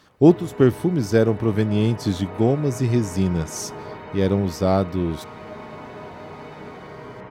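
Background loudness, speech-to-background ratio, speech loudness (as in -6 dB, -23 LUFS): -37.5 LUFS, 16.5 dB, -21.0 LUFS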